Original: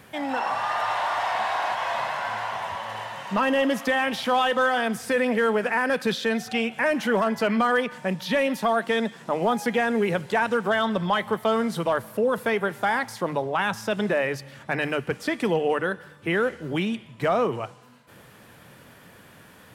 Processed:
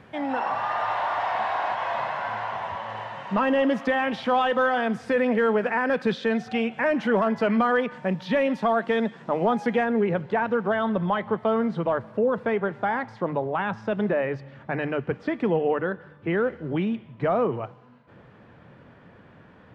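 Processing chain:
head-to-tape spacing loss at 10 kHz 24 dB, from 0:09.83 at 10 kHz 39 dB
level +2 dB

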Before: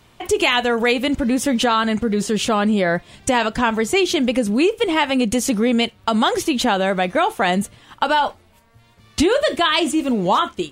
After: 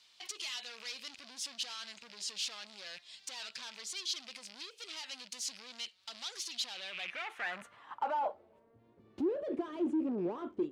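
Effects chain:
loose part that buzzes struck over −32 dBFS, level −22 dBFS
downward compressor 4 to 1, threshold −21 dBFS, peak gain reduction 8 dB
gain into a clipping stage and back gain 27 dB
band-pass filter sweep 4,600 Hz → 350 Hz, 0:06.62–0:08.79

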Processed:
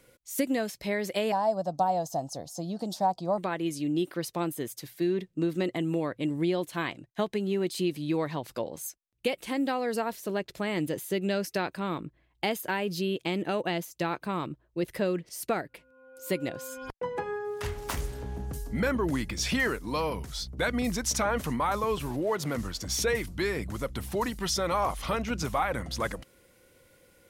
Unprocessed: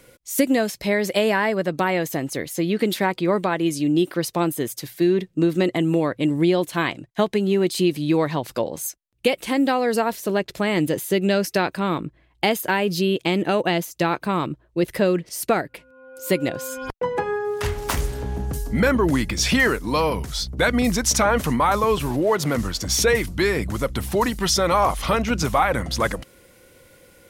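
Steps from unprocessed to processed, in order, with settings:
0:01.32–0:03.38: drawn EQ curve 180 Hz 0 dB, 420 Hz −10 dB, 720 Hz +13 dB, 2,100 Hz −24 dB, 5,300 Hz +6 dB, 13,000 Hz −8 dB
level −9 dB

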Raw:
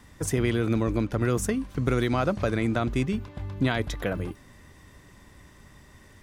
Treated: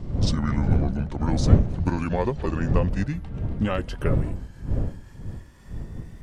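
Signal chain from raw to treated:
pitch glide at a constant tempo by −9.5 semitones ending unshifted
wind on the microphone 110 Hz −25 dBFS
dynamic equaliser 560 Hz, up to +6 dB, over −47 dBFS, Q 2.9

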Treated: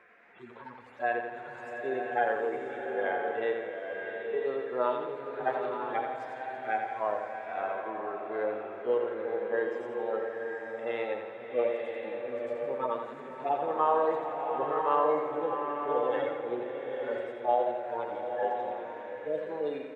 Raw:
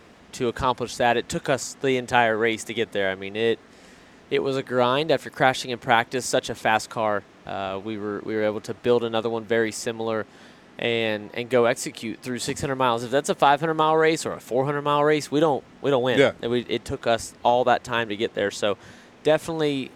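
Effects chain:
harmonic-percussive split with one part muted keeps harmonic
noise in a band 1,400–2,500 Hz −55 dBFS
three-way crossover with the lows and the highs turned down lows −21 dB, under 400 Hz, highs −21 dB, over 2,200 Hz
on a send: repeating echo 85 ms, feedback 56%, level −7 dB
on the sum: slow-attack reverb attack 970 ms, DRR 2.5 dB
level −4.5 dB

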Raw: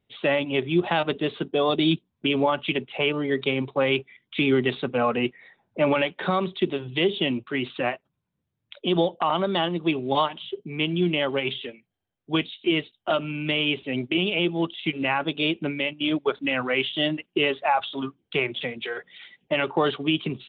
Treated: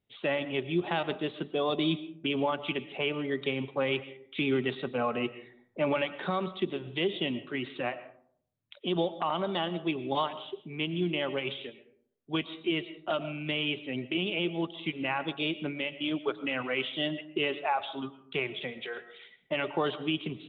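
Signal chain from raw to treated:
comb and all-pass reverb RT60 0.62 s, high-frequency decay 0.4×, pre-delay 75 ms, DRR 14 dB
level −7 dB

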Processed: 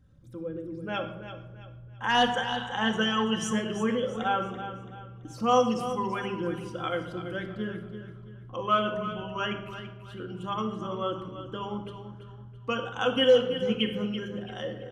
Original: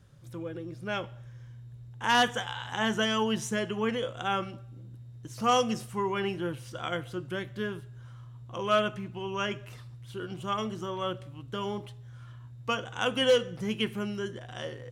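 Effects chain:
spectral envelope exaggerated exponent 1.5
mains-hum notches 50/100/150/200 Hz
on a send: repeating echo 334 ms, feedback 36%, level −11 dB
on the sum: rectangular room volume 3,400 cubic metres, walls furnished, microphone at 2.1 metres

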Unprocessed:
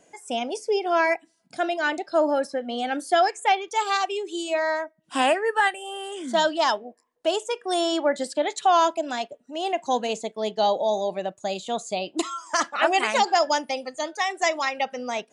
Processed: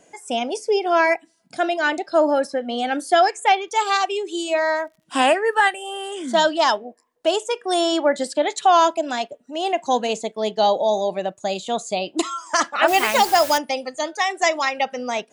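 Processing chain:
0:04.31–0:05.85: surface crackle 66 per second −50 dBFS
0:12.88–0:13.58: bit-depth reduction 6 bits, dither triangular
level +4 dB

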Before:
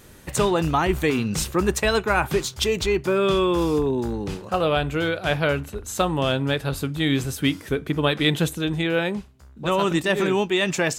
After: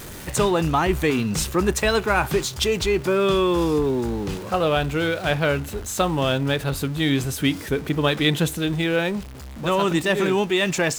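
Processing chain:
converter with a step at zero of −33.5 dBFS

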